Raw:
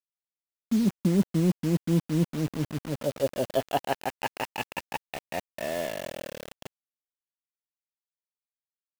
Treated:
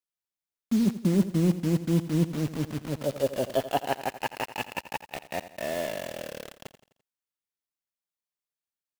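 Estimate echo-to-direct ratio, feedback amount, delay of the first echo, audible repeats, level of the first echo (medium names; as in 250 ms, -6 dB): -13.0 dB, 46%, 85 ms, 4, -14.0 dB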